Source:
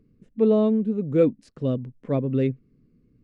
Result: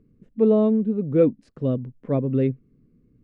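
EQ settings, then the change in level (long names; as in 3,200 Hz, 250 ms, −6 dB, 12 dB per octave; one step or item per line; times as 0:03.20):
high-shelf EQ 3,000 Hz −11.5 dB
+1.5 dB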